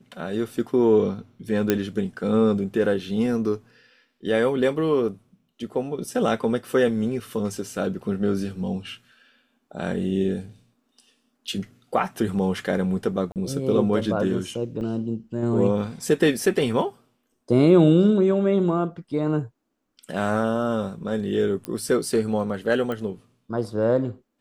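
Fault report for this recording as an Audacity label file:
1.700000	1.700000	pop -6 dBFS
13.320000	13.360000	dropout 38 ms
14.810000	14.810000	dropout 2.2 ms
21.650000	21.650000	pop -16 dBFS
22.920000	22.920000	pop -18 dBFS

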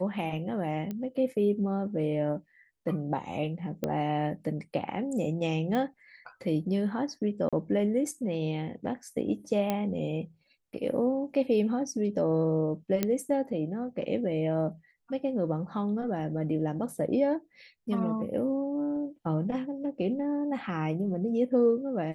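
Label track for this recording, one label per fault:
0.910000	0.910000	pop -23 dBFS
3.840000	3.840000	pop -17 dBFS
5.750000	5.750000	pop -19 dBFS
7.490000	7.530000	dropout 36 ms
9.700000	9.700000	pop -15 dBFS
13.030000	13.030000	pop -12 dBFS

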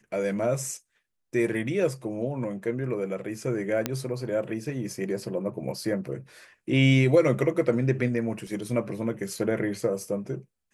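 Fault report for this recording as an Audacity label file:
3.860000	3.860000	pop -10 dBFS
8.470000	8.470000	dropout 2.2 ms

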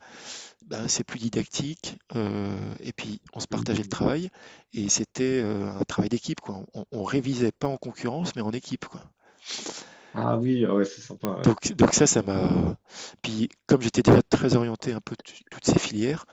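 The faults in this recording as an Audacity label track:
7.650000	7.650000	dropout 3.3 ms
11.250000	11.250000	pop -12 dBFS

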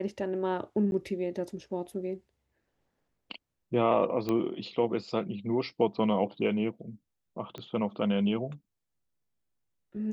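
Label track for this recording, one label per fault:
0.910000	0.920000	dropout
4.290000	4.290000	pop -18 dBFS
7.580000	7.580000	pop -27 dBFS

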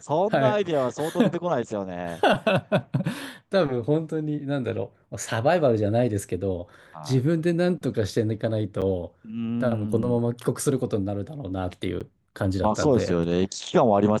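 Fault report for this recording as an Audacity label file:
8.810000	8.820000	dropout 7.7 ms
12.000000	12.010000	dropout 6.9 ms

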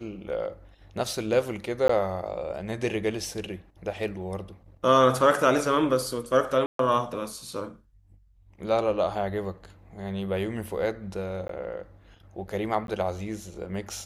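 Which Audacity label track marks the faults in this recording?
1.880000	1.890000	dropout 14 ms
6.660000	6.790000	dropout 133 ms
11.480000	11.490000	dropout
12.870000	12.880000	dropout

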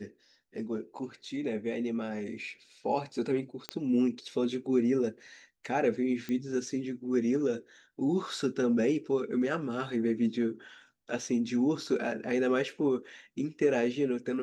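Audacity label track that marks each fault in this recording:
3.690000	3.690000	pop -18 dBFS
6.290000	6.290000	pop -23 dBFS

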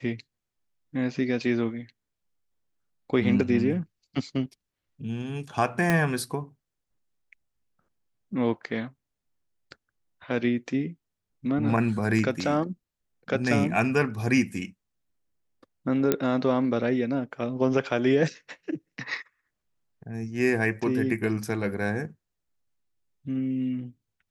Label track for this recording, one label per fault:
5.900000	5.900000	pop -10 dBFS
16.120000	16.120000	pop -8 dBFS

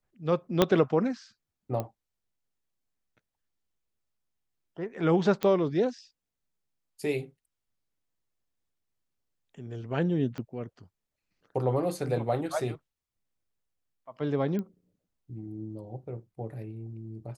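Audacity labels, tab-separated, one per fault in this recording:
0.620000	0.620000	pop -7 dBFS
1.800000	1.800000	pop -19 dBFS
5.430000	5.430000	pop -15 dBFS
10.380000	10.380000	pop -24 dBFS
14.590000	14.590000	pop -23 dBFS

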